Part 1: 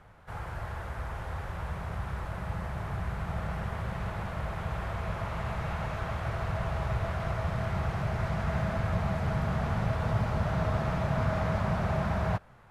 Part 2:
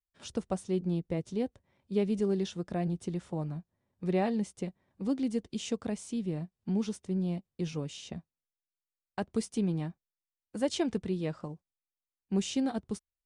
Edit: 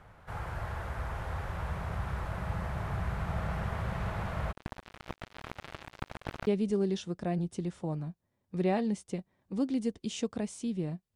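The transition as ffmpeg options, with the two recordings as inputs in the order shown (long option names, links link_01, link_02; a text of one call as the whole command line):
ffmpeg -i cue0.wav -i cue1.wav -filter_complex "[0:a]asplit=3[link_01][link_02][link_03];[link_01]afade=type=out:start_time=4.51:duration=0.02[link_04];[link_02]acrusher=bits=3:mix=0:aa=0.5,afade=type=in:start_time=4.51:duration=0.02,afade=type=out:start_time=6.47:duration=0.02[link_05];[link_03]afade=type=in:start_time=6.47:duration=0.02[link_06];[link_04][link_05][link_06]amix=inputs=3:normalize=0,apad=whole_dur=11.15,atrim=end=11.15,atrim=end=6.472[link_07];[1:a]atrim=start=1.958:end=6.64[link_08];[link_07][link_08]acrossfade=duration=0.004:curve1=hsin:curve2=hsin" out.wav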